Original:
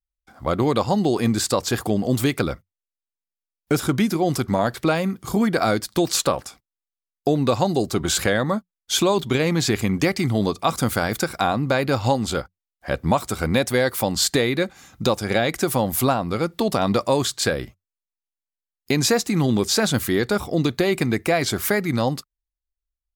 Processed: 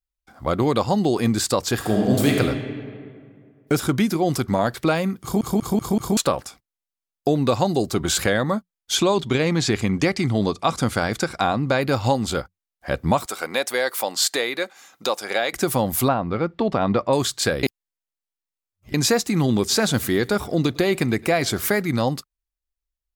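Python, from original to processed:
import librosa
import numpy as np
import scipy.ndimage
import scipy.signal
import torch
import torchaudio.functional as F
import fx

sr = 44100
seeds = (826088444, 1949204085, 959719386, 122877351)

y = fx.reverb_throw(x, sr, start_s=1.75, length_s=0.63, rt60_s=2.1, drr_db=-0.5)
y = fx.lowpass(y, sr, hz=8300.0, slope=12, at=(8.95, 11.81))
y = fx.highpass(y, sr, hz=510.0, slope=12, at=(13.26, 15.53))
y = fx.lowpass(y, sr, hz=2500.0, slope=12, at=(16.08, 17.13))
y = fx.echo_feedback(y, sr, ms=106, feedback_pct=40, wet_db=-23.5, at=(19.69, 21.81), fade=0.02)
y = fx.edit(y, sr, fx.stutter_over(start_s=5.22, slice_s=0.19, count=5),
    fx.reverse_span(start_s=17.63, length_s=1.31), tone=tone)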